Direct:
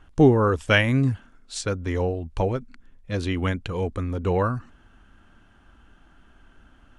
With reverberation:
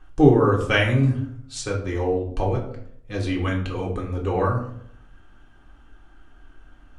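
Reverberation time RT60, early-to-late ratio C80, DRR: 0.65 s, 11.5 dB, −1.0 dB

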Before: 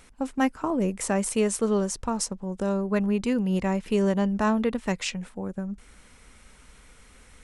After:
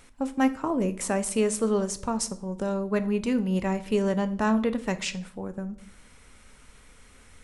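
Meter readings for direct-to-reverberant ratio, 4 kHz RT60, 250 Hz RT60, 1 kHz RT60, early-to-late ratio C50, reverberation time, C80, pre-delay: 10.5 dB, 0.45 s, 0.65 s, 0.50 s, 16.5 dB, 0.60 s, 20.5 dB, 7 ms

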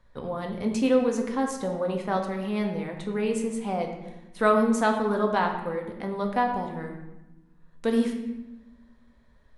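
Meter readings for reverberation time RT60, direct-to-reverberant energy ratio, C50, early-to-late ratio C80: 1.0 s, 2.0 dB, 6.0 dB, 8.0 dB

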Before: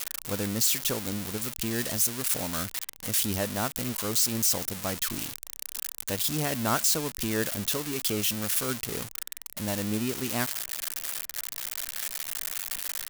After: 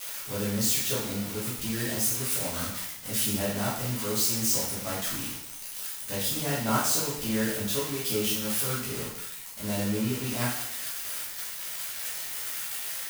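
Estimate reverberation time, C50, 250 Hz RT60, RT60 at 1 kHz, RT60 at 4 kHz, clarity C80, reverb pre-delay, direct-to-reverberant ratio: 0.75 s, 2.0 dB, 0.80 s, 0.75 s, 0.70 s, 5.5 dB, 5 ms, −8.5 dB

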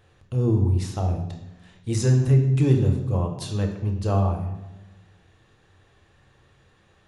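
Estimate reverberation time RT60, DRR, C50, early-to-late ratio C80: 1.1 s, 3.0 dB, 6.5 dB, 9.0 dB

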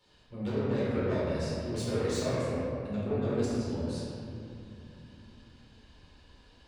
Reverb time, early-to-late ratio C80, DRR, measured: 2.7 s, −2.0 dB, −10.0 dB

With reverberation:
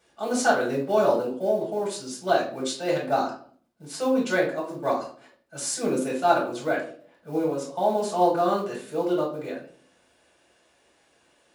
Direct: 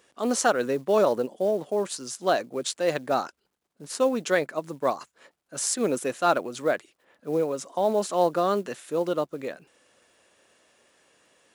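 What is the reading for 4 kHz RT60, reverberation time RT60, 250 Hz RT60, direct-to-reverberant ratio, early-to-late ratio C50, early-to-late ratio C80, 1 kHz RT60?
0.35 s, 0.50 s, 0.70 s, −5.5 dB, 6.0 dB, 12.0 dB, 0.45 s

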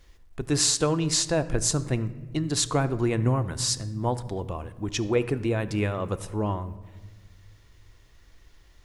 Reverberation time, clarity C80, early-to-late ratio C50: 1.3 s, 17.0 dB, 15.5 dB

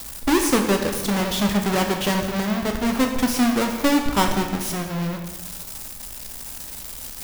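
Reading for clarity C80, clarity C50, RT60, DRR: 7.5 dB, 6.0 dB, 1.3 s, 3.0 dB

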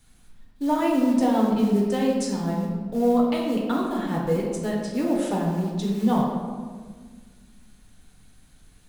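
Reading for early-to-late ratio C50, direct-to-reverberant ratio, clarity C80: 1.5 dB, −3.0 dB, 3.5 dB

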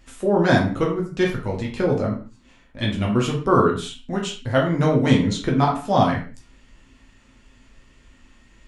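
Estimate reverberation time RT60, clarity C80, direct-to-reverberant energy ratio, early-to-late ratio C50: non-exponential decay, 11.0 dB, −2.5 dB, 6.5 dB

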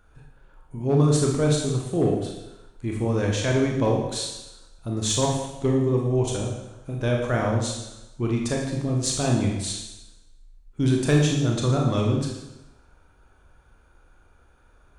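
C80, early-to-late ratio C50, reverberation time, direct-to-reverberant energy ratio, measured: 5.5 dB, 2.5 dB, 0.95 s, −1.0 dB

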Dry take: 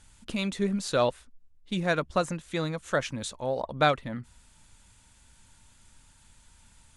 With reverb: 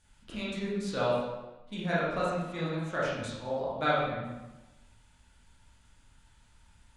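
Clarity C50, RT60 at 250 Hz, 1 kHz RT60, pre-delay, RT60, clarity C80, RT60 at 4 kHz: −1.5 dB, 1.1 s, 1.1 s, 18 ms, 1.1 s, 2.5 dB, 0.85 s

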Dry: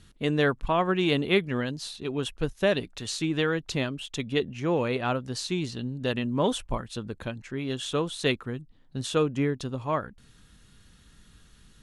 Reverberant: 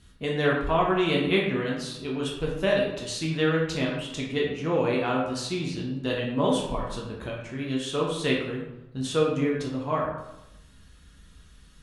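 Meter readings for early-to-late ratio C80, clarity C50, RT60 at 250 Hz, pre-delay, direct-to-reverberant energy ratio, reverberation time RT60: 5.5 dB, 3.0 dB, 0.95 s, 6 ms, −3.5 dB, 0.95 s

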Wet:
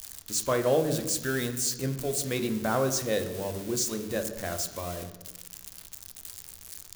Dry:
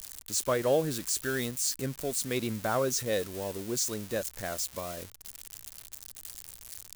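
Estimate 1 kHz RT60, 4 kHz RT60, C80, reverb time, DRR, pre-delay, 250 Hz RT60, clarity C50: 1.0 s, 0.80 s, 12.0 dB, 1.1 s, 7.0 dB, 3 ms, 1.6 s, 10.0 dB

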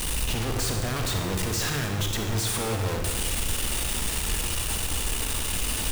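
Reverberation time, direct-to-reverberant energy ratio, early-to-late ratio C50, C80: 1.4 s, 2.5 dB, 3.5 dB, 5.5 dB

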